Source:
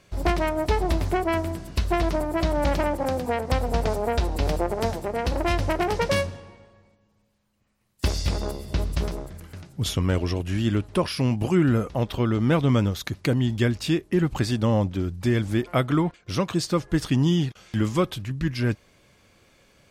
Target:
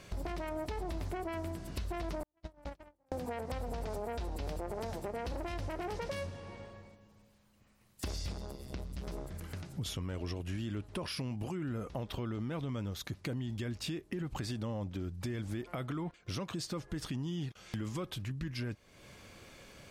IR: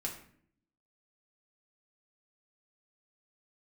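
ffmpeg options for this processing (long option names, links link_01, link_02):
-filter_complex "[0:a]asettb=1/sr,asplit=3[link_01][link_02][link_03];[link_01]atrim=end=2.234[link_04];[link_02]atrim=start=2.23:end=3.12,asetpts=PTS-STARTPTS,afade=type=in:duration=0.004:curve=qsin,afade=type=out:start_time=0.886:duration=0.004:curve=qsin,agate=range=-53dB:threshold=-17dB:ratio=16:detection=peak[link_05];[link_03]atrim=start=3.116[link_06];[link_04][link_05]acrossfade=duration=0.004:curve1=hsin:curve2=qsin[link_07];[link_07][link_06]acrossfade=duration=0.004:curve1=qsin:curve2=hsin,alimiter=limit=-19dB:level=0:latency=1:release=28,acompressor=threshold=-45dB:ratio=3,asettb=1/sr,asplit=3[link_08][link_09][link_10];[link_08]atrim=end=8.324[link_11];[link_09]atrim=start=8.32:end=9.07,asetpts=PTS-STARTPTS,afade=type=in:duration=0.004:curve=qsin,afade=type=out:start_time=0.746:duration=0.004:curve=qsin,tremolo=f=130:d=0.824[link_12];[link_10]atrim=start=9.066[link_13];[link_11][link_12]acrossfade=duration=0.004:curve1=hsin:curve2=qsin[link_14];[link_14][link_13]acrossfade=duration=0.004:curve1=qsin:curve2=hsin,volume=4dB"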